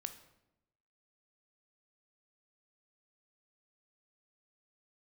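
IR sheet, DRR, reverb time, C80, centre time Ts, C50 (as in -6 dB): 8.5 dB, 0.90 s, 14.5 dB, 10 ms, 11.5 dB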